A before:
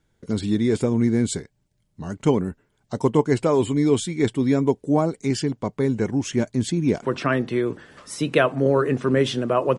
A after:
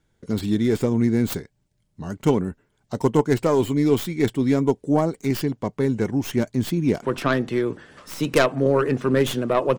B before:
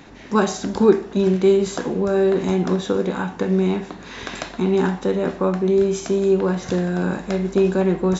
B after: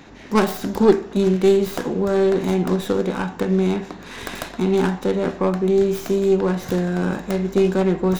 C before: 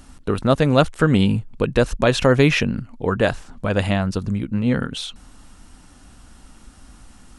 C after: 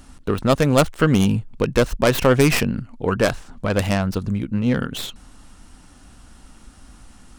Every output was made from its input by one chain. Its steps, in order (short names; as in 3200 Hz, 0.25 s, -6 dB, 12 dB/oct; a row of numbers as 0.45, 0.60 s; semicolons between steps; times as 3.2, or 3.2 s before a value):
tracing distortion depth 0.23 ms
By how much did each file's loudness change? 0.0, 0.0, 0.0 LU